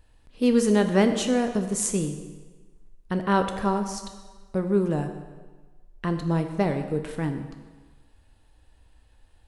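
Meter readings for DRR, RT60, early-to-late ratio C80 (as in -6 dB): 6.5 dB, 1.4 s, 10.0 dB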